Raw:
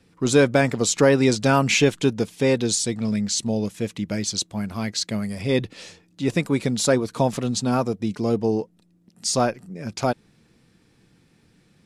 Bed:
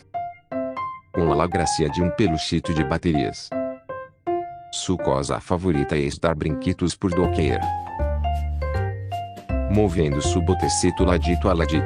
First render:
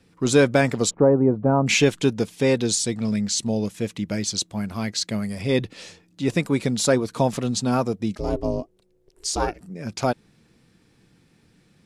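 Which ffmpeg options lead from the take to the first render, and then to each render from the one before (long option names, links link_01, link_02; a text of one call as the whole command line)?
ffmpeg -i in.wav -filter_complex "[0:a]asplit=3[link_01][link_02][link_03];[link_01]afade=type=out:start_time=0.89:duration=0.02[link_04];[link_02]lowpass=frequency=1000:width=0.5412,lowpass=frequency=1000:width=1.3066,afade=type=in:start_time=0.89:duration=0.02,afade=type=out:start_time=1.66:duration=0.02[link_05];[link_03]afade=type=in:start_time=1.66:duration=0.02[link_06];[link_04][link_05][link_06]amix=inputs=3:normalize=0,asettb=1/sr,asplit=3[link_07][link_08][link_09];[link_07]atrim=end=8.154[link_10];[link_08]atrim=start=8.15:end=9.61,asetpts=PTS-STARTPTS,afade=type=in:duration=0.004:curve=qsin,afade=type=out:start_time=1.456:duration=0.004:curve=qsin,aeval=exprs='val(0)*sin(2*PI*190*n/s)':channel_layout=same[link_11];[link_09]atrim=start=9.606[link_12];[link_10][link_11]acrossfade=duration=0.004:curve1=hsin:curve2=qsin[link_13];[link_13][link_12]acrossfade=duration=0.004:curve1=qsin:curve2=hsin" out.wav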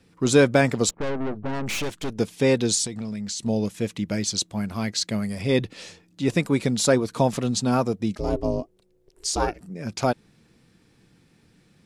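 ffmpeg -i in.wav -filter_complex "[0:a]asettb=1/sr,asplit=3[link_01][link_02][link_03];[link_01]atrim=end=0.894[link_04];[link_02]atrim=start=0.89:end=2.19,asetpts=PTS-STARTPTS,afade=type=in:duration=0.004:curve=qsin,afade=type=out:start_time=1.296:duration=0.004:curve=qsin,aeval=exprs='(tanh(20*val(0)+0.8)-tanh(0.8))/20':channel_layout=same[link_05];[link_03]atrim=start=2.186[link_06];[link_04][link_05]acrossfade=duration=0.004:curve1=hsin:curve2=qsin[link_07];[link_07][link_06]acrossfade=duration=0.004:curve1=qsin:curve2=hsin,asettb=1/sr,asplit=3[link_08][link_09][link_10];[link_08]atrim=end=2.864[link_11];[link_09]atrim=start=2.86:end=3.46,asetpts=PTS-STARTPTS,afade=type=in:duration=0.004:curve=qsin,afade=type=out:start_time=0.596:duration=0.004:curve=qsin,acompressor=threshold=-27dB:ratio=10:attack=3.2:release=140:knee=1:detection=peak[link_12];[link_10]atrim=start=3.456[link_13];[link_11][link_12]acrossfade=duration=0.004:curve1=hsin:curve2=qsin[link_14];[link_14][link_13]acrossfade=duration=0.004:curve1=qsin:curve2=hsin" out.wav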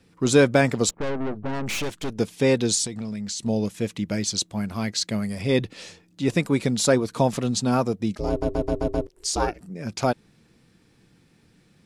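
ffmpeg -i in.wav -filter_complex "[0:a]asplit=7[link_01][link_02][link_03][link_04][link_05][link_06][link_07];[link_01]atrim=end=8.422[link_08];[link_02]atrim=start=8.288:end=8.422[link_09];[link_03]atrim=start=8.288:end=8.422[link_10];[link_04]atrim=start=8.288:end=8.422[link_11];[link_05]atrim=start=8.288:end=8.422[link_12];[link_06]atrim=start=8.288:end=8.422[link_13];[link_07]atrim=start=9.068[link_14];[link_08][link_09]acrossfade=duration=0.004:curve1=hsin:curve2=hsin[link_15];[link_15][link_10]acrossfade=duration=0.004:curve1=hsin:curve2=hsin[link_16];[link_16][link_11]acrossfade=duration=0.004:curve1=hsin:curve2=hsin[link_17];[link_17][link_12]acrossfade=duration=0.004:curve1=hsin:curve2=hsin[link_18];[link_18][link_13]acrossfade=duration=0.004:curve1=hsin:curve2=hsin[link_19];[link_19][link_14]acrossfade=duration=0.004:curve1=hsin:curve2=hsin" out.wav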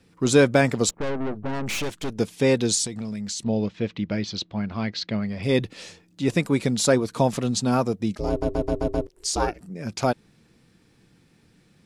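ffmpeg -i in.wav -filter_complex "[0:a]asettb=1/sr,asplit=3[link_01][link_02][link_03];[link_01]atrim=end=3.434[link_04];[link_02]atrim=start=3.43:end=5.43,asetpts=PTS-STARTPTS,afade=type=in:duration=0.004:curve=qsin,afade=type=out:start_time=1.996:duration=0.004:curve=qsin,lowpass=frequency=4300:width=0.5412,lowpass=frequency=4300:width=1.3066[link_05];[link_03]atrim=start=5.426[link_06];[link_04][link_05]acrossfade=duration=0.004:curve1=hsin:curve2=qsin[link_07];[link_07][link_06]acrossfade=duration=0.004:curve1=qsin:curve2=hsin" out.wav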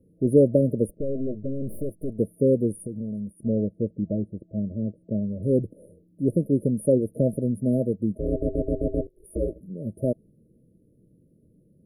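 ffmpeg -i in.wav -af "highshelf=frequency=8100:gain=-9.5,afftfilt=real='re*(1-between(b*sr/4096,650,9300))':imag='im*(1-between(b*sr/4096,650,9300))':win_size=4096:overlap=0.75" out.wav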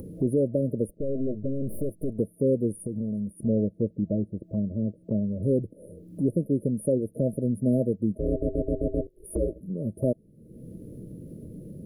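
ffmpeg -i in.wav -af "acompressor=mode=upward:threshold=-25dB:ratio=2.5,alimiter=limit=-14dB:level=0:latency=1:release=391" out.wav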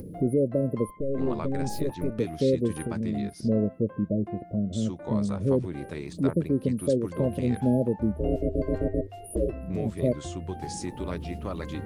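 ffmpeg -i in.wav -i bed.wav -filter_complex "[1:a]volume=-15dB[link_01];[0:a][link_01]amix=inputs=2:normalize=0" out.wav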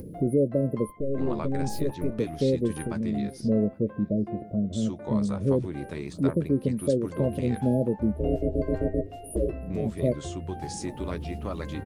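ffmpeg -i in.wav -filter_complex "[0:a]asplit=2[link_01][link_02];[link_02]adelay=14,volume=-13.5dB[link_03];[link_01][link_03]amix=inputs=2:normalize=0,asplit=2[link_04][link_05];[link_05]adelay=815,lowpass=frequency=2400:poles=1,volume=-23.5dB,asplit=2[link_06][link_07];[link_07]adelay=815,lowpass=frequency=2400:poles=1,volume=0.35[link_08];[link_04][link_06][link_08]amix=inputs=3:normalize=0" out.wav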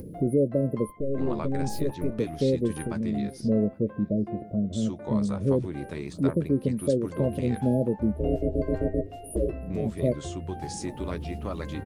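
ffmpeg -i in.wav -af anull out.wav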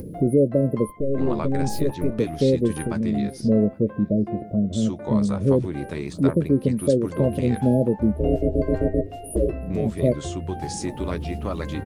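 ffmpeg -i in.wav -af "volume=5dB" out.wav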